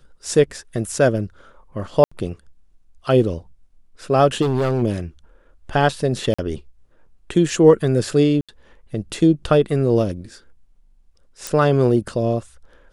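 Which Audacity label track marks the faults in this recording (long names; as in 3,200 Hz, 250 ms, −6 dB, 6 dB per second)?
2.040000	2.120000	drop-out 75 ms
4.410000	4.830000	clipping −15.5 dBFS
6.340000	6.380000	drop-out 45 ms
8.410000	8.490000	drop-out 76 ms
11.470000	11.470000	click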